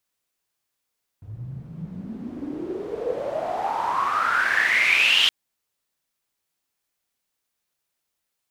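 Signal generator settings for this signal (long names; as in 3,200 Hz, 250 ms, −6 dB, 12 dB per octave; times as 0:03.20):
filter sweep on noise pink, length 4.07 s bandpass, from 100 Hz, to 3,200 Hz, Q 10, exponential, gain ramp +21 dB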